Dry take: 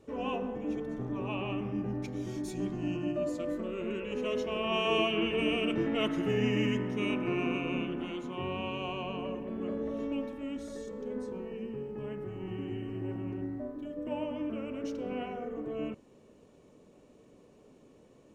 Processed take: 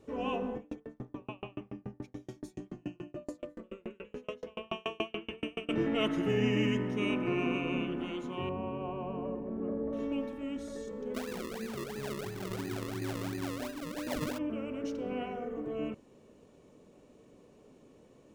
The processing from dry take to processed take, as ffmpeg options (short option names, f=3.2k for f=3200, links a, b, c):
-filter_complex "[0:a]asettb=1/sr,asplit=3[a][b][c];[a]atrim=end=0.574[d];[b]atrim=start=0.57:end=5.69,asetpts=PTS-STARTPTS,afade=t=in:d=0.004:c=qsin,afade=t=out:st=5.116:d=0.004:c=qsin,aeval=exprs='val(0)*pow(10,-38*if(lt(mod(7*n/s,1),2*abs(7)/1000),1-mod(7*n/s,1)/(2*abs(7)/1000),(mod(7*n/s,1)-2*abs(7)/1000)/(1-2*abs(7)/1000))/20)':c=same[e];[c]atrim=start=5.686[f];[d][e]acrossfade=d=0.004:c1=hsin:c2=qsin[g];[g][f]acrossfade=d=0.004:c1=qsin:c2=hsin,asettb=1/sr,asplit=3[h][i][j];[h]atrim=end=8.494[k];[i]atrim=start=8.49:end=9.93,asetpts=PTS-STARTPTS,afade=t=in:d=0.004:c=qsin,afade=t=out:st=1.436:d=0.004:c=qsin,lowpass=1.1k[l];[j]atrim=start=9.926[m];[k][l]acrossfade=d=0.004:c1=hsin:c2=qsin[n];[n][m]acrossfade=d=0.004:c1=qsin:c2=hsin,asplit=3[o][p][q];[o]afade=t=out:st=11.14:d=0.02[r];[p]acrusher=samples=39:mix=1:aa=0.000001:lfo=1:lforange=39:lforate=2.9,afade=t=in:st=11.14:d=0.02,afade=t=out:st=14.37:d=0.02[s];[q]afade=t=in:st=14.37:d=0.02[t];[r][s][t]amix=inputs=3:normalize=0"